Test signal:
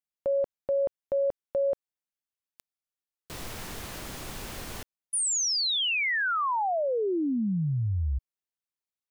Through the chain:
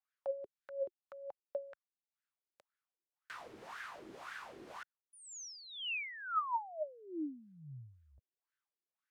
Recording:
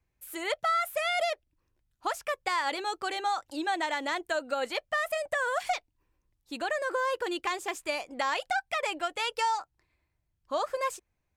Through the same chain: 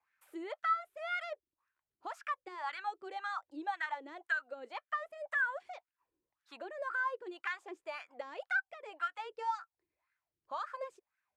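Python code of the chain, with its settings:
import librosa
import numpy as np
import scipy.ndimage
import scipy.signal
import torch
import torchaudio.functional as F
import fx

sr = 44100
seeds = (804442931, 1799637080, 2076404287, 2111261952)

y = fx.tone_stack(x, sr, knobs='5-5-5')
y = fx.wah_lfo(y, sr, hz=1.9, low_hz=340.0, high_hz=1600.0, q=5.4)
y = fx.band_squash(y, sr, depth_pct=40)
y = y * librosa.db_to_amplitude(15.5)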